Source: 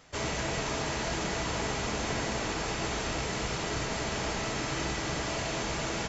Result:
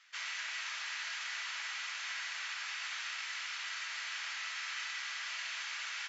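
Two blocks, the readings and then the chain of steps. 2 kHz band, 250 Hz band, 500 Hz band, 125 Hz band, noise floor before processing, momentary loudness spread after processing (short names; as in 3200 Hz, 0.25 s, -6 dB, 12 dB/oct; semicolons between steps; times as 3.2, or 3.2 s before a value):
-2.0 dB, under -40 dB, -33.0 dB, under -40 dB, -34 dBFS, 1 LU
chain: HPF 1500 Hz 24 dB/oct; air absorption 120 m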